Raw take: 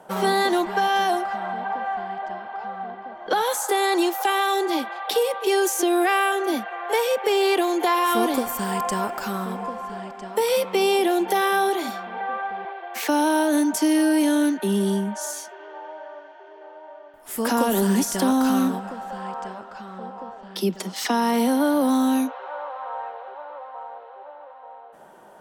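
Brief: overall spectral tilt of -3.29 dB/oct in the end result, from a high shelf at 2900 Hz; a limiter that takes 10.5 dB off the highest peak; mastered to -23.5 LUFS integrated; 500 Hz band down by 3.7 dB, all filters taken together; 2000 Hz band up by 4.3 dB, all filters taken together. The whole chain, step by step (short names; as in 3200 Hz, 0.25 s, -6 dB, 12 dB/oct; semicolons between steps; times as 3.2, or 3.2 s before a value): bell 500 Hz -5.5 dB; bell 2000 Hz +4 dB; high shelf 2900 Hz +5.5 dB; gain +1.5 dB; limiter -13.5 dBFS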